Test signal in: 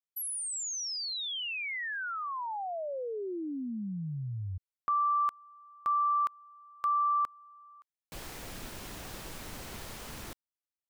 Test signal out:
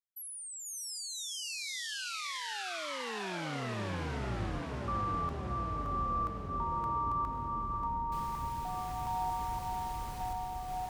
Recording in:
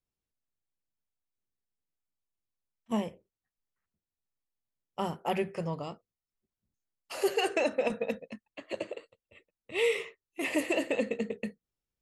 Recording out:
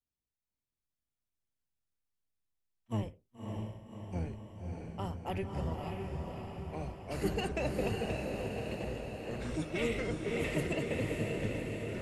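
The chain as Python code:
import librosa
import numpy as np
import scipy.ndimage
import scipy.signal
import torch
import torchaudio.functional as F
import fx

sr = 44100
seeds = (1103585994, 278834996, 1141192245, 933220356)

y = fx.octave_divider(x, sr, octaves=1, level_db=4.0)
y = fx.echo_pitch(y, sr, ms=451, semitones=-4, count=3, db_per_echo=-3.0)
y = fx.echo_diffused(y, sr, ms=580, feedback_pct=62, wet_db=-3.0)
y = y * 10.0 ** (-8.0 / 20.0)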